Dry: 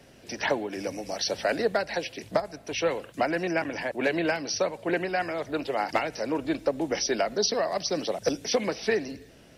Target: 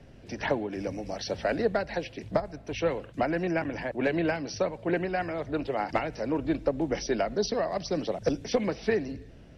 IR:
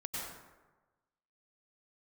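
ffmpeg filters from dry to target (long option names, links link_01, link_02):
-af "aeval=exprs='0.211*(cos(1*acos(clip(val(0)/0.211,-1,1)))-cos(1*PI/2))+0.0075*(cos(3*acos(clip(val(0)/0.211,-1,1)))-cos(3*PI/2))':channel_layout=same,aemphasis=mode=reproduction:type=bsi,volume=-2dB"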